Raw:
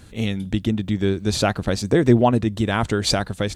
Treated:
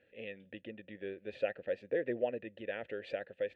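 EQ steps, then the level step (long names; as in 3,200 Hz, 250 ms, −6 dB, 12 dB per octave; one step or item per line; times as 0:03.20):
formant filter e
high shelf with overshoot 4,000 Hz −13.5 dB, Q 1.5
−6.0 dB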